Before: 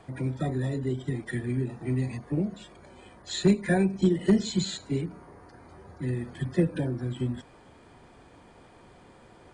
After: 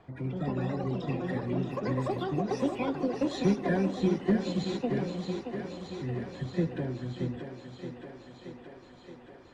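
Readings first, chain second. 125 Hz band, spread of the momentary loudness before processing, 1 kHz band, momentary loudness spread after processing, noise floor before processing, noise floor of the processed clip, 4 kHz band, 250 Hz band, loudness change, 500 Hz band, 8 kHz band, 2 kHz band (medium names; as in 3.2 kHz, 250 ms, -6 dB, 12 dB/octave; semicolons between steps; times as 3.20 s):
-4.0 dB, 10 LU, +4.5 dB, 19 LU, -54 dBFS, -52 dBFS, -5.5 dB, -2.0 dB, -3.0 dB, -0.5 dB, -10.5 dB, -3.0 dB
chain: ever faster or slower copies 183 ms, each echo +6 st, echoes 3; distance through air 140 m; thinning echo 625 ms, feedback 75%, high-pass 180 Hz, level -7 dB; trim -4.5 dB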